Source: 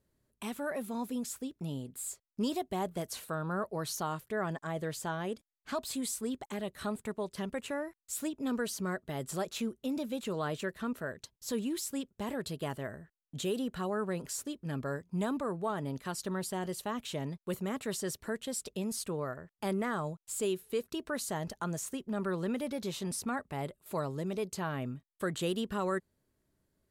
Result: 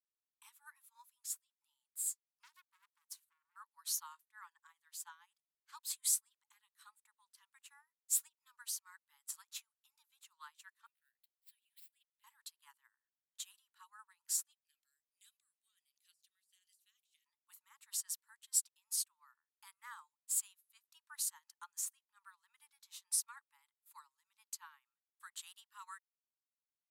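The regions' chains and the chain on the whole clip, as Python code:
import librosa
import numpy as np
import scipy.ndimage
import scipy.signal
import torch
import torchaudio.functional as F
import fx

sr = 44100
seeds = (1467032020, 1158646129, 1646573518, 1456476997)

y = fx.chain(x, sr, fx.law_mismatch(coded='A'),
    fx.transformer_sat(knee_hz=2300.0), at=(2.43, 3.56))
y = fx.chain(y, sr, fx.dead_time(dead_ms=0.056),
    fx.bessel_highpass(hz=1700.0, order=2),
    fx.fixed_phaser(hz=2700.0, stages=4), at=(10.86, 12.24))
y = fx.chain(y, sr, fx.cheby2_highpass(hz=570.0, order=4, stop_db=70),
    fx.over_compress(threshold_db=-51.0, ratio=-1.0), at=(14.52, 17.26))
y = scipy.signal.sosfilt(scipy.signal.cheby1(10, 1.0, 860.0, 'highpass', fs=sr, output='sos'), y)
y = fx.high_shelf(y, sr, hz=5700.0, db=11.5)
y = fx.upward_expand(y, sr, threshold_db=-49.0, expansion=2.5)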